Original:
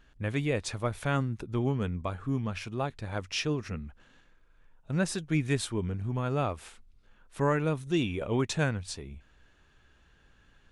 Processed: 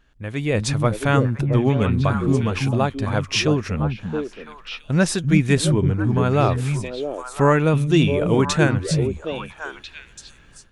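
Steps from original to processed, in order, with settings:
echo through a band-pass that steps 336 ms, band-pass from 160 Hz, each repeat 1.4 octaves, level −0.5 dB
automatic gain control gain up to 11 dB

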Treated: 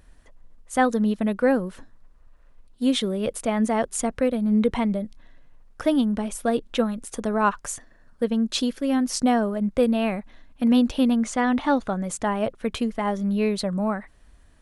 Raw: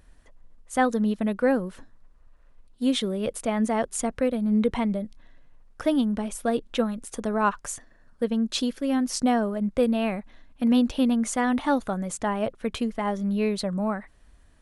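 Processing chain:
0:11.23–0:12.04: low-pass filter 6,300 Hz 12 dB per octave
level +2 dB

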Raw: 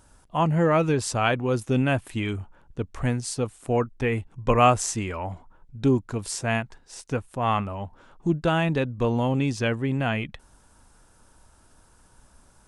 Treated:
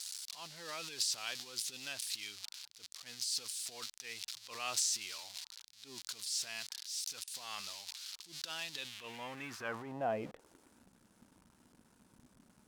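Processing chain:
spike at every zero crossing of −21.5 dBFS
transient designer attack −10 dB, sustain +9 dB
band-pass filter sweep 4,400 Hz → 220 Hz, 0:08.69–0:10.85
level −2 dB

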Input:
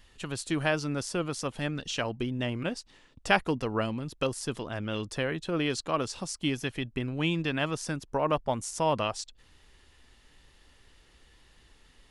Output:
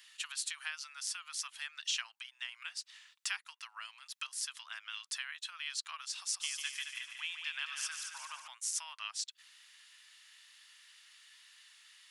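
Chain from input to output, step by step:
downward compressor 5 to 1, threshold −36 dBFS, peak gain reduction 17 dB
Bessel high-pass filter 2,000 Hz, order 8
0:06.18–0:08.48: echo machine with several playback heads 73 ms, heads second and third, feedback 52%, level −7 dB
level +6 dB

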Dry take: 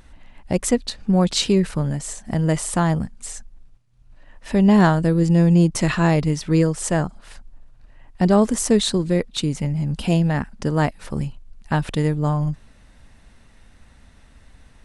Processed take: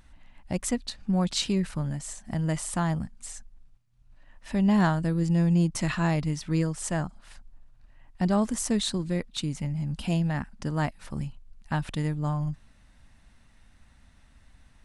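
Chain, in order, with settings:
parametric band 440 Hz −7.5 dB 0.7 octaves
level −7 dB

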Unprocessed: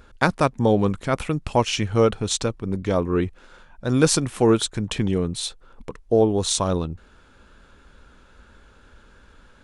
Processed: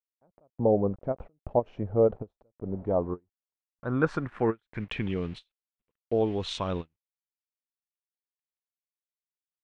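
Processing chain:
centre clipping without the shift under −38 dBFS
low-pass filter sweep 630 Hz → 2,800 Hz, 0:02.67–0:05.23
every ending faded ahead of time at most 550 dB per second
level −8.5 dB

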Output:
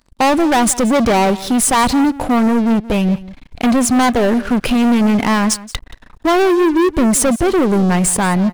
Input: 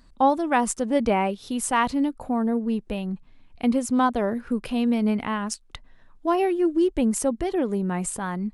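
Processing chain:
leveller curve on the samples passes 5
single-tap delay 177 ms −18 dB

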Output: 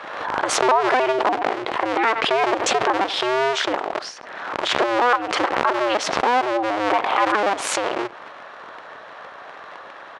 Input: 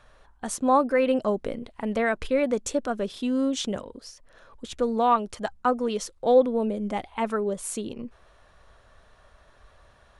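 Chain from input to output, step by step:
sub-harmonics by changed cycles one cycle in 2, inverted
downward compressor 6 to 1, threshold −35 dBFS, peak gain reduction 20 dB
high-pass filter 720 Hz 12 dB per octave
head-to-tape spacing loss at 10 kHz 30 dB
far-end echo of a speakerphone 90 ms, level −24 dB
boost into a limiter +32 dB
background raised ahead of every attack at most 38 dB per second
level −6.5 dB

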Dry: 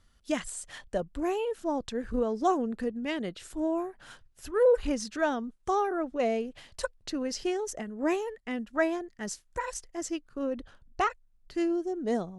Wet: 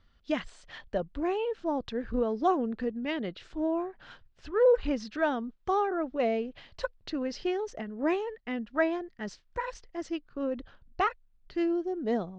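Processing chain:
low-pass filter 4,500 Hz 24 dB per octave

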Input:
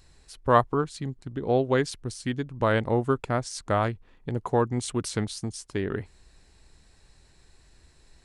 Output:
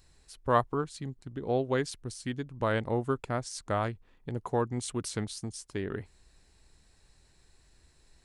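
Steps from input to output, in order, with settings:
high-shelf EQ 7,500 Hz +4.5 dB
level −5.5 dB

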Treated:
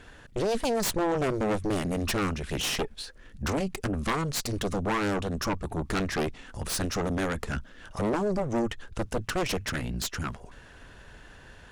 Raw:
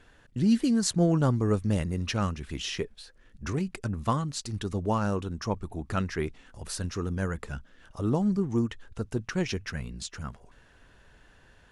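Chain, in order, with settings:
downward compressor 2 to 1, threshold −30 dBFS, peak gain reduction 7 dB
harmonic generator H 3 −10 dB, 4 −8 dB, 7 −11 dB, 8 −17 dB, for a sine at −15.5 dBFS
soft clipping −24 dBFS, distortion −13 dB
level +2.5 dB

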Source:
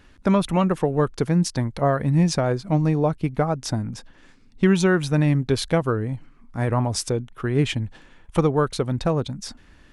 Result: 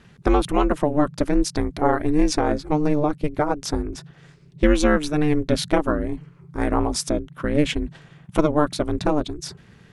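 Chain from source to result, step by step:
ring modulation 150 Hz
level +4 dB

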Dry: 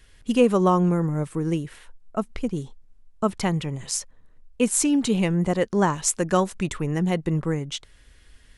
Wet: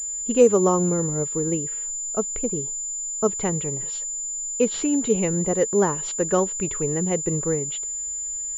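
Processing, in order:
parametric band 440 Hz +10.5 dB 0.55 octaves
switching amplifier with a slow clock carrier 7,100 Hz
level −3.5 dB

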